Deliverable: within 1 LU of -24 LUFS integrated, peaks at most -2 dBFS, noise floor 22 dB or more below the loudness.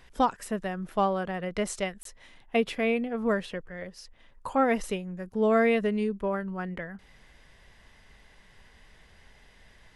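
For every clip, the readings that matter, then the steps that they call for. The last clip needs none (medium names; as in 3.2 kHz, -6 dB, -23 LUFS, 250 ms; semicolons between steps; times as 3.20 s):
dropouts 1; longest dropout 23 ms; loudness -28.5 LUFS; peak level -12.5 dBFS; loudness target -24.0 LUFS
-> interpolate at 2.03 s, 23 ms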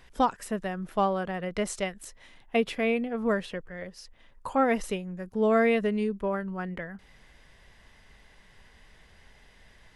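dropouts 0; loudness -28.5 LUFS; peak level -12.5 dBFS; loudness target -24.0 LUFS
-> trim +4.5 dB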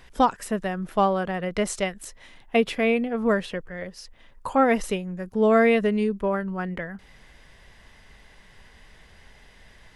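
loudness -24.0 LUFS; peak level -8.0 dBFS; noise floor -53 dBFS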